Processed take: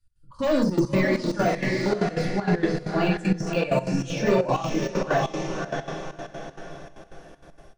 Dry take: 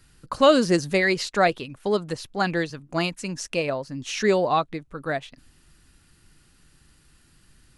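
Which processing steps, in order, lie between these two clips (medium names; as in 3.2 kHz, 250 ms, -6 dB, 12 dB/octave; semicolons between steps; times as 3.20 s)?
expander on every frequency bin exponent 1.5; saturation -21 dBFS, distortion -8 dB; Chebyshev low-pass 7 kHz, order 2; peaking EQ 700 Hz +4 dB 1.5 oct; peak limiter -26 dBFS, peak gain reduction 8.5 dB; 1.17–3.49 s: treble shelf 4.4 kHz -11 dB; echo that smears into a reverb 601 ms, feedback 41%, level -5 dB; simulated room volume 490 m³, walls furnished, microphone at 2.5 m; level rider gain up to 14 dB; trance gate "x.xx.xxxx.x.xxx." 194 bpm -12 dB; de-esser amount 75%; trim -5 dB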